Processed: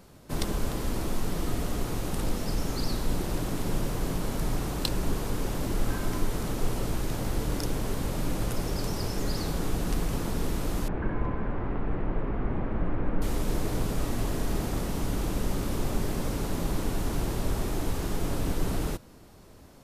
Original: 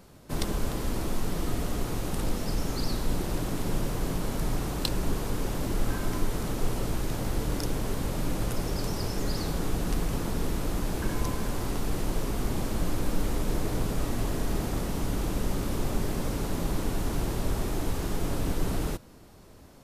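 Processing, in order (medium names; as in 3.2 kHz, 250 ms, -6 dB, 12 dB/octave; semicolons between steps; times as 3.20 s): 10.88–13.22 s: low-pass 2.1 kHz 24 dB/octave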